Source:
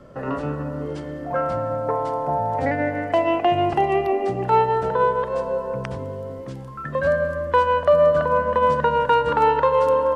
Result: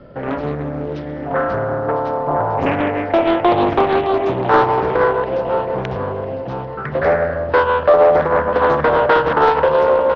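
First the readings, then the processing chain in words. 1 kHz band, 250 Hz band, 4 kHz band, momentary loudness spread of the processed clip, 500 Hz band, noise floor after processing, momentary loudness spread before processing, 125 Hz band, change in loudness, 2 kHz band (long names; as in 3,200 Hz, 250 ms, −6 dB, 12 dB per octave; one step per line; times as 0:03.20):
+3.5 dB, +6.5 dB, +4.5 dB, 11 LU, +5.0 dB, −27 dBFS, 13 LU, +4.0 dB, +4.0 dB, +6.5 dB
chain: high-frequency loss of the air 69 metres
notch filter 1,100 Hz, Q 6.3
repeating echo 1,003 ms, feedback 46%, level −11 dB
downsampling to 11,025 Hz
highs frequency-modulated by the lows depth 0.64 ms
level +5 dB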